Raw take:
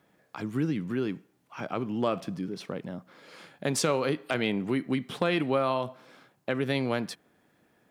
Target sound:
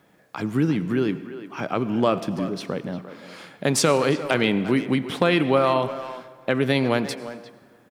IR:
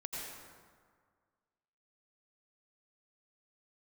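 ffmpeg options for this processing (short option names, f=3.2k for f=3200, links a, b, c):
-filter_complex "[0:a]asplit=2[a][b];[b]adelay=350,highpass=300,lowpass=3.4k,asoftclip=type=hard:threshold=-22dB,volume=-12dB[c];[a][c]amix=inputs=2:normalize=0,asplit=2[d][e];[1:a]atrim=start_sample=2205[f];[e][f]afir=irnorm=-1:irlink=0,volume=-13dB[g];[d][g]amix=inputs=2:normalize=0,volume=6dB"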